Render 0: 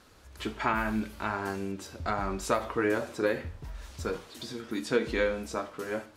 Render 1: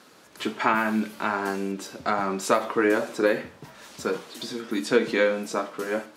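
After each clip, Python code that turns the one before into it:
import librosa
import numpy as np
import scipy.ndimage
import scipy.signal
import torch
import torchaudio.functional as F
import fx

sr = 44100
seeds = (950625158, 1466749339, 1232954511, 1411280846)

y = scipy.signal.sosfilt(scipy.signal.butter(4, 160.0, 'highpass', fs=sr, output='sos'), x)
y = F.gain(torch.from_numpy(y), 6.0).numpy()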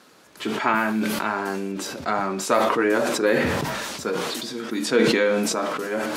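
y = fx.sustainer(x, sr, db_per_s=23.0)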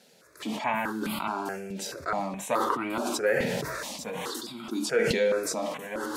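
y = fx.phaser_held(x, sr, hz=4.7, low_hz=310.0, high_hz=1700.0)
y = F.gain(torch.from_numpy(y), -3.0).numpy()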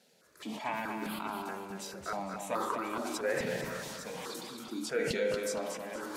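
y = fx.echo_feedback(x, sr, ms=233, feedback_pct=34, wet_db=-6)
y = F.gain(torch.from_numpy(y), -7.5).numpy()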